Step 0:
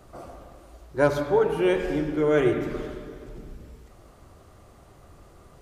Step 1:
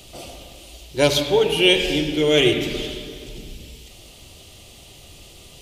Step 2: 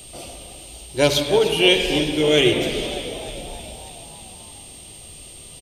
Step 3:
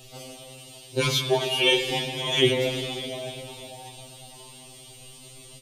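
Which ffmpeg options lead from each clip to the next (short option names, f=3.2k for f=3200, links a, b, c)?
-af "highshelf=f=2.1k:t=q:w=3:g=12.5,bandreject=f=1.1k:w=11,volume=4dB"
-filter_complex "[0:a]aeval=exprs='val(0)+0.00891*sin(2*PI*8600*n/s)':c=same,asplit=2[a][b];[b]asplit=7[c][d][e][f][g][h][i];[c]adelay=303,afreqshift=63,volume=-12.5dB[j];[d]adelay=606,afreqshift=126,volume=-16.7dB[k];[e]adelay=909,afreqshift=189,volume=-20.8dB[l];[f]adelay=1212,afreqshift=252,volume=-25dB[m];[g]adelay=1515,afreqshift=315,volume=-29.1dB[n];[h]adelay=1818,afreqshift=378,volume=-33.3dB[o];[i]adelay=2121,afreqshift=441,volume=-37.4dB[p];[j][k][l][m][n][o][p]amix=inputs=7:normalize=0[q];[a][q]amix=inputs=2:normalize=0"
-af "afftfilt=real='re*2.45*eq(mod(b,6),0)':imag='im*2.45*eq(mod(b,6),0)':win_size=2048:overlap=0.75,volume=-1dB"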